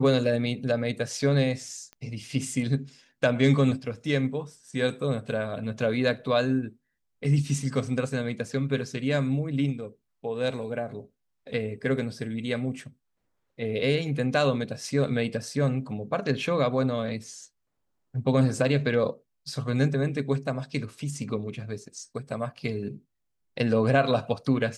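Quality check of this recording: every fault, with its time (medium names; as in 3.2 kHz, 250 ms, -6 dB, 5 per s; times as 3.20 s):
1.93 s: pop -29 dBFS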